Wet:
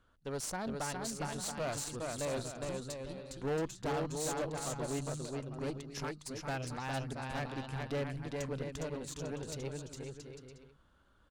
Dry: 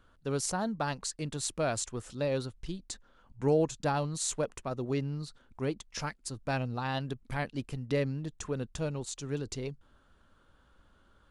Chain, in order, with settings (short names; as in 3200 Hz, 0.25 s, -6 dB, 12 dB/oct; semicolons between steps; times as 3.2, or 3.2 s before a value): bouncing-ball echo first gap 0.41 s, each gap 0.65×, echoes 5; one-sided clip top -26.5 dBFS; added harmonics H 2 -8 dB, 6 -25 dB, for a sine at -17 dBFS; gain -6 dB